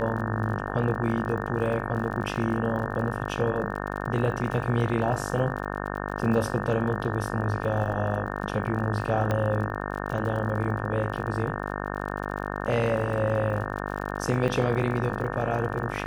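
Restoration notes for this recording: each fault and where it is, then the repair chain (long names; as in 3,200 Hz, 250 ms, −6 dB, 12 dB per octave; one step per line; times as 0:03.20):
mains buzz 50 Hz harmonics 36 −32 dBFS
surface crackle 43 per second −35 dBFS
0:09.31: click −14 dBFS
0:14.48–0:14.49: drop-out 5.5 ms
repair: click removal
hum removal 50 Hz, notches 36
repair the gap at 0:14.48, 5.5 ms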